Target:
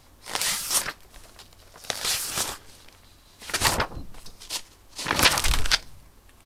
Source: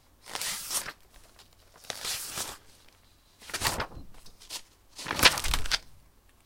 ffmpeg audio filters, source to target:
-af "aresample=32000,aresample=44100,alimiter=level_in=11dB:limit=-1dB:release=50:level=0:latency=1,volume=-3.5dB"

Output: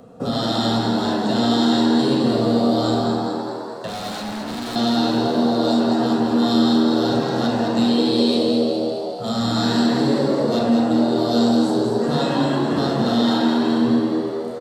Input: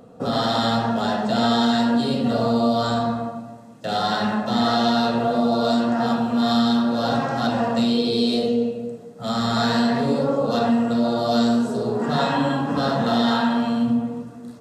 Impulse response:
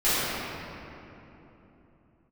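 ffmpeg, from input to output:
-filter_complex "[0:a]acrossover=split=480|3000[a][b][c];[b]acompressor=threshold=-43dB:ratio=1.5[d];[a][d][c]amix=inputs=3:normalize=0,asettb=1/sr,asplit=3[e][f][g];[e]atrim=end=3.874[h];[f]atrim=start=3.87:end=4.76,asetpts=PTS-STARTPTS,afade=t=in:d=0.004:c=qsin,afade=t=out:st=0.886:d=0.004:c=qsin,volume=30dB,asoftclip=hard,volume=-30dB[i];[g]atrim=start=4.756[j];[h][i]acrossfade=d=0.004:c1=hsin:c2=qsin[k];[k][j]acrossfade=d=0.004:c1=qsin:c2=hsin,asplit=9[l][m][n][o][p][q][r][s][t];[m]adelay=209,afreqshift=81,volume=-5.5dB[u];[n]adelay=418,afreqshift=162,volume=-9.9dB[v];[o]adelay=627,afreqshift=243,volume=-14.4dB[w];[p]adelay=836,afreqshift=324,volume=-18.8dB[x];[q]adelay=1045,afreqshift=405,volume=-23.2dB[y];[r]adelay=1254,afreqshift=486,volume=-27.7dB[z];[s]adelay=1463,afreqshift=567,volume=-32.1dB[aa];[t]adelay=1672,afreqshift=648,volume=-36.6dB[ab];[l][u][v][w][x][y][z][aa][ab]amix=inputs=9:normalize=0,volume=2dB"

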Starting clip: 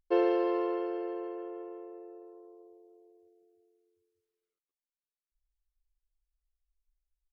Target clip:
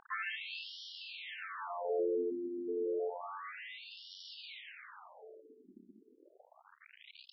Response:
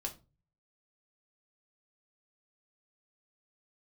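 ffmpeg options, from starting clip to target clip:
-af "aeval=exprs='val(0)+0.5*0.0188*sgn(val(0))':c=same,aecho=1:1:411|822|1233|1644:0.316|0.123|0.0481|0.0188,afftfilt=real='re*between(b*sr/1024,280*pow(4100/280,0.5+0.5*sin(2*PI*0.3*pts/sr))/1.41,280*pow(4100/280,0.5+0.5*sin(2*PI*0.3*pts/sr))*1.41)':imag='im*between(b*sr/1024,280*pow(4100/280,0.5+0.5*sin(2*PI*0.3*pts/sr))/1.41,280*pow(4100/280,0.5+0.5*sin(2*PI*0.3*pts/sr))*1.41)':win_size=1024:overlap=0.75,volume=5.5dB"

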